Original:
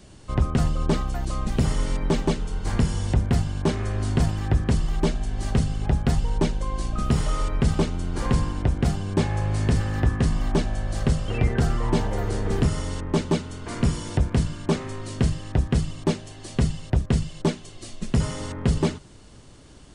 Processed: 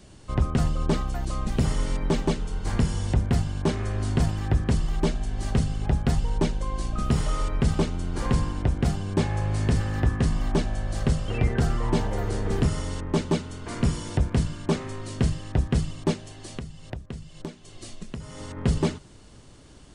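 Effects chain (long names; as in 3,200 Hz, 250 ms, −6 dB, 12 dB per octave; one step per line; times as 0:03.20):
0:16.13–0:18.57: downward compressor 10 to 1, threshold −31 dBFS, peak gain reduction 15.5 dB
level −1.5 dB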